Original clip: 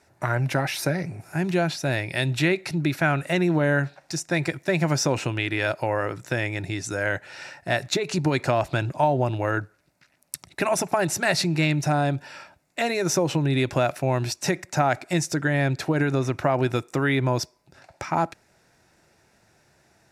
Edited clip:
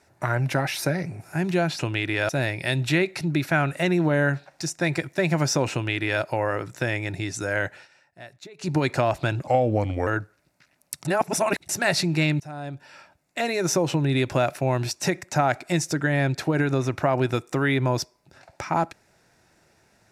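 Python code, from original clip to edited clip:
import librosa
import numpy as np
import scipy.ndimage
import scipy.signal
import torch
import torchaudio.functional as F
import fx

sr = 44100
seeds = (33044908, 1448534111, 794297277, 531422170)

y = fx.edit(x, sr, fx.duplicate(start_s=5.22, length_s=0.5, to_s=1.79),
    fx.fade_down_up(start_s=7.24, length_s=0.98, db=-19.0, fade_s=0.14),
    fx.speed_span(start_s=8.97, length_s=0.51, speed=0.85),
    fx.reverse_span(start_s=10.46, length_s=0.64),
    fx.fade_in_from(start_s=11.81, length_s=1.19, floor_db=-20.5), tone=tone)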